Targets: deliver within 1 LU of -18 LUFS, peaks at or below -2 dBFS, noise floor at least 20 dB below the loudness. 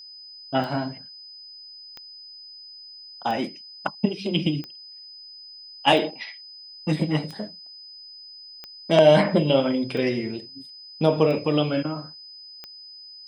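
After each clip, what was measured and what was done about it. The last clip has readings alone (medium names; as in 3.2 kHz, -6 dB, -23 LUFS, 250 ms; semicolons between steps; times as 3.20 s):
clicks found 10; steady tone 5 kHz; tone level -41 dBFS; loudness -23.5 LUFS; peak level -5.0 dBFS; loudness target -18.0 LUFS
-> de-click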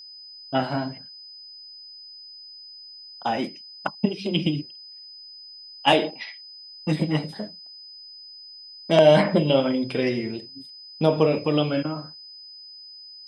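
clicks found 0; steady tone 5 kHz; tone level -41 dBFS
-> band-stop 5 kHz, Q 30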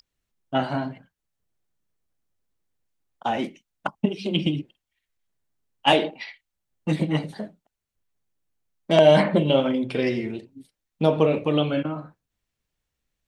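steady tone not found; loudness -23.0 LUFS; peak level -5.0 dBFS; loudness target -18.0 LUFS
-> trim +5 dB; peak limiter -2 dBFS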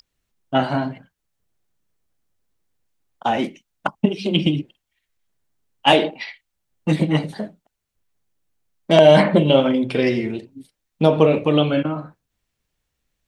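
loudness -18.5 LUFS; peak level -2.0 dBFS; noise floor -78 dBFS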